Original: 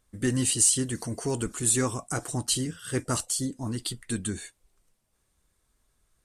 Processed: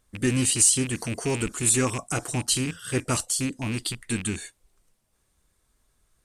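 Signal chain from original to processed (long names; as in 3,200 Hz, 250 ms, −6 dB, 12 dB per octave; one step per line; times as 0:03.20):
loose part that buzzes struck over −35 dBFS, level −26 dBFS
level +2.5 dB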